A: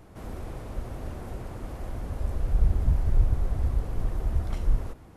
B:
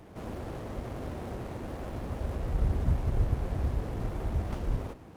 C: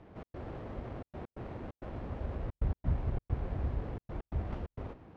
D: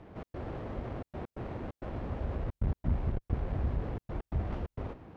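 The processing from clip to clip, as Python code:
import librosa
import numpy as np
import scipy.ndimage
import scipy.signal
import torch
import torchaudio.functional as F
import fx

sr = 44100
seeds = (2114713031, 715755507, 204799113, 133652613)

y1 = fx.highpass(x, sr, hz=130.0, slope=6)
y1 = fx.running_max(y1, sr, window=17)
y1 = y1 * librosa.db_to_amplitude(3.5)
y2 = scipy.signal.sosfilt(scipy.signal.butter(2, 3000.0, 'lowpass', fs=sr, output='sos'), y1)
y2 = fx.step_gate(y2, sr, bpm=132, pattern='xx.xxxxxx.x.x', floor_db=-60.0, edge_ms=4.5)
y2 = y2 * librosa.db_to_amplitude(-4.0)
y3 = fx.transformer_sat(y2, sr, knee_hz=120.0)
y3 = y3 * librosa.db_to_amplitude(3.5)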